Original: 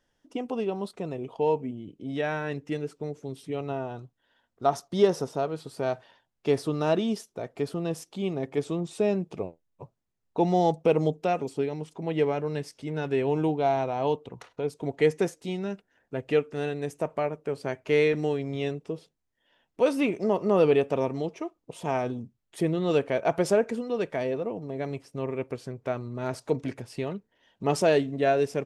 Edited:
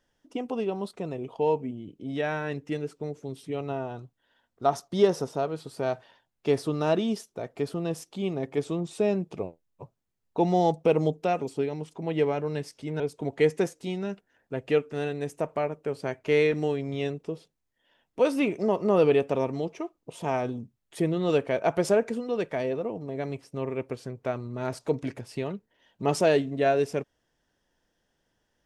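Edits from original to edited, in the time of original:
13.00–14.61 s: delete

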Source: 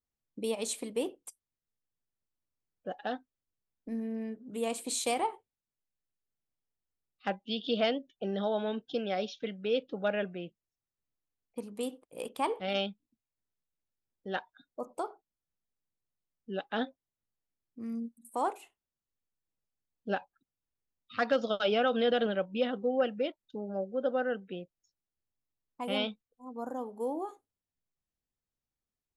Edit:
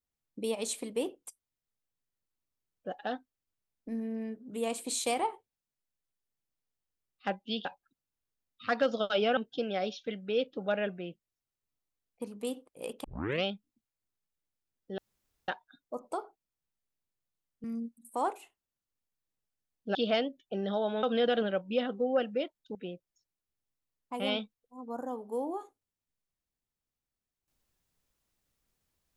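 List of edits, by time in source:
7.65–8.73 s: swap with 20.15–21.87 s
12.40 s: tape start 0.40 s
14.34 s: insert room tone 0.50 s
16.50–17.84 s: delete
23.59–24.43 s: delete

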